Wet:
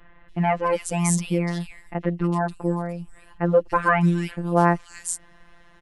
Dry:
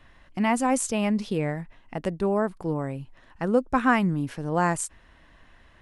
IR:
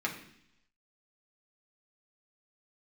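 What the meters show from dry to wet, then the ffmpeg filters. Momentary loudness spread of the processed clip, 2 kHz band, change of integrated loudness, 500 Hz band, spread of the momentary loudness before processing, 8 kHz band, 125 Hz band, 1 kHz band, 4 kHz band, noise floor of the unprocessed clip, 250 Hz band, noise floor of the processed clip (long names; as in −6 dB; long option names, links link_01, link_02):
12 LU, +2.0 dB, +2.5 dB, +3.0 dB, 12 LU, +3.0 dB, +6.5 dB, +3.0 dB, 0.0 dB, −56 dBFS, +1.0 dB, −52 dBFS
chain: -filter_complex "[0:a]acrossover=split=2800[link_01][link_02];[link_02]adelay=290[link_03];[link_01][link_03]amix=inputs=2:normalize=0,afftfilt=real='hypot(re,im)*cos(PI*b)':imag='0':win_size=1024:overlap=0.75,volume=6.5dB"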